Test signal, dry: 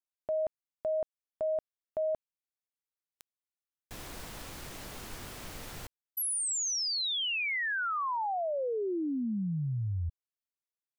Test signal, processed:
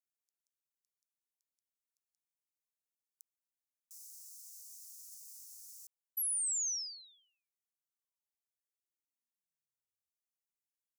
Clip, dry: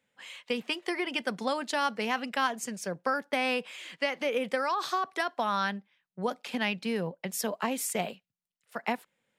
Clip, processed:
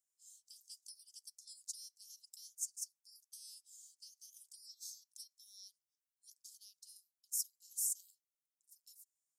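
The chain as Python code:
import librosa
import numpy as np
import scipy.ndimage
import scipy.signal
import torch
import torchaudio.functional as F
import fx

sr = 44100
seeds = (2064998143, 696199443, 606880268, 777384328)

p1 = fx.level_steps(x, sr, step_db=10)
p2 = x + (p1 * 10.0 ** (-2.0 / 20.0))
p3 = scipy.signal.sosfilt(scipy.signal.cheby2(6, 80, 2200.0, 'highpass', fs=sr, output='sos'), p2)
y = p3 * 10.0 ** (-4.5 / 20.0)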